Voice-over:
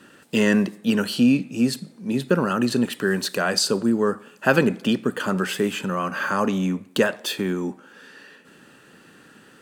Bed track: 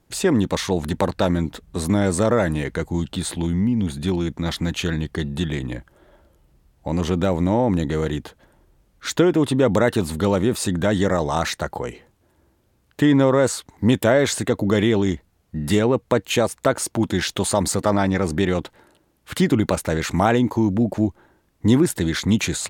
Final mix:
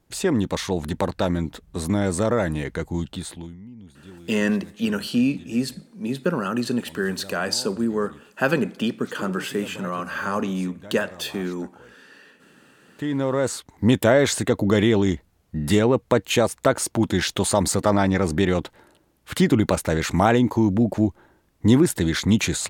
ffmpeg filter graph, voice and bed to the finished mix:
ffmpeg -i stem1.wav -i stem2.wav -filter_complex "[0:a]adelay=3950,volume=-3dB[link_01];[1:a]volume=19dB,afade=type=out:start_time=3.01:duration=0.56:silence=0.112202,afade=type=in:start_time=12.8:duration=1.16:silence=0.0794328[link_02];[link_01][link_02]amix=inputs=2:normalize=0" out.wav

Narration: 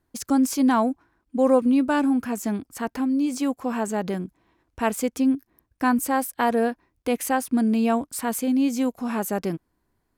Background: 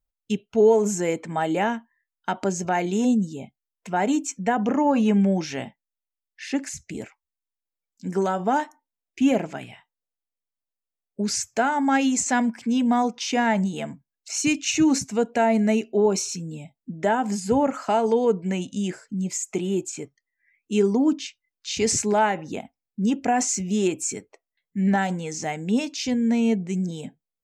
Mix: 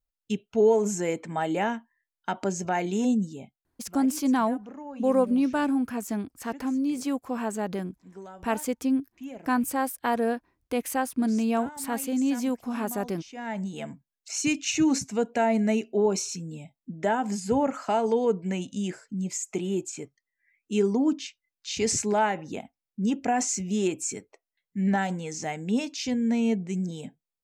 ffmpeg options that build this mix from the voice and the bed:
ffmpeg -i stem1.wav -i stem2.wav -filter_complex "[0:a]adelay=3650,volume=-4dB[link_01];[1:a]volume=13dB,afade=type=out:start_time=3.21:duration=0.74:silence=0.149624,afade=type=in:start_time=13.33:duration=0.62:silence=0.149624[link_02];[link_01][link_02]amix=inputs=2:normalize=0" out.wav

